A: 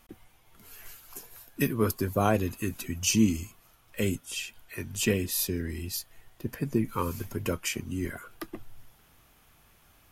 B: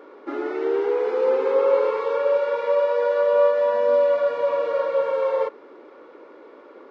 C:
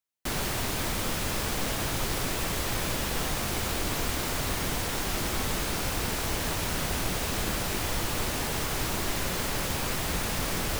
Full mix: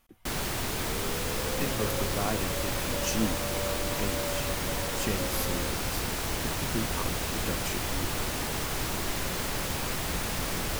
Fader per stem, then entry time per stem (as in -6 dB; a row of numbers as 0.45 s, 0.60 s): -7.0 dB, -18.5 dB, -1.5 dB; 0.00 s, 0.25 s, 0.00 s